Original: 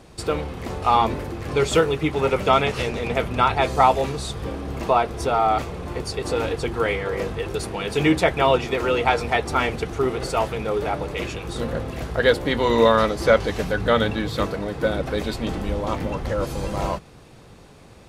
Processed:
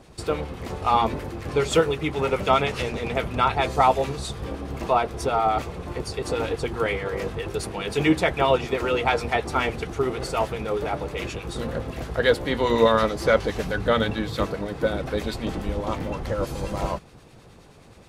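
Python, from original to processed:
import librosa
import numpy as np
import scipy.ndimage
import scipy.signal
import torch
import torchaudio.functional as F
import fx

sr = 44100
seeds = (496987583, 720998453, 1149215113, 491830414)

y = fx.harmonic_tremolo(x, sr, hz=9.5, depth_pct=50, crossover_hz=1200.0)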